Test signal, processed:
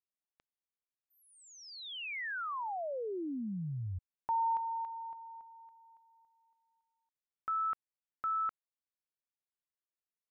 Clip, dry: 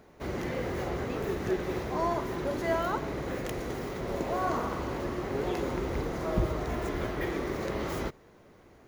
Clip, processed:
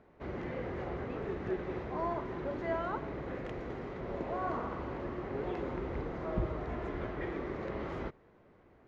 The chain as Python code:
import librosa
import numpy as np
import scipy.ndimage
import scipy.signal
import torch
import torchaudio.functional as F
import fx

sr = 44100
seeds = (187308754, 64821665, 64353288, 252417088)

y = scipy.signal.sosfilt(scipy.signal.butter(2, 2500.0, 'lowpass', fs=sr, output='sos'), x)
y = y * 10.0 ** (-5.5 / 20.0)